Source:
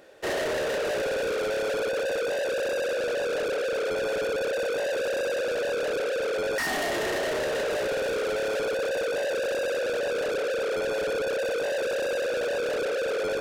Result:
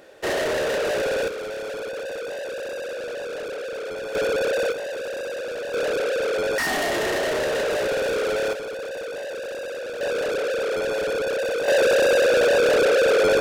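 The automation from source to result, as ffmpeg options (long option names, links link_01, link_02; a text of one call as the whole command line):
ffmpeg -i in.wav -af "asetnsamples=nb_out_samples=441:pad=0,asendcmd='1.28 volume volume -3.5dB;4.15 volume volume 5dB;4.72 volume volume -2.5dB;5.74 volume volume 4dB;8.53 volume volume -4dB;10.01 volume volume 3dB;11.68 volume volume 10dB',volume=4dB" out.wav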